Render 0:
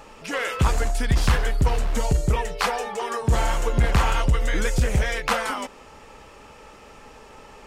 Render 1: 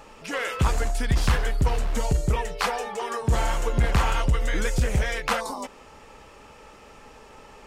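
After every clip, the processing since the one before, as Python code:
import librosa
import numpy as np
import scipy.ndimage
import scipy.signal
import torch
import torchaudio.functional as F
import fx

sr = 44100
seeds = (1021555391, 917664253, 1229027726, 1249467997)

y = fx.spec_box(x, sr, start_s=5.4, length_s=0.24, low_hz=1200.0, high_hz=3500.0, gain_db=-21)
y = y * librosa.db_to_amplitude(-2.0)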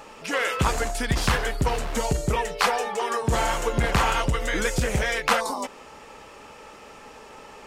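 y = fx.low_shelf(x, sr, hz=110.0, db=-11.0)
y = y * librosa.db_to_amplitude(4.0)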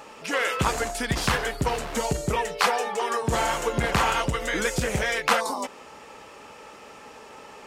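y = fx.highpass(x, sr, hz=100.0, slope=6)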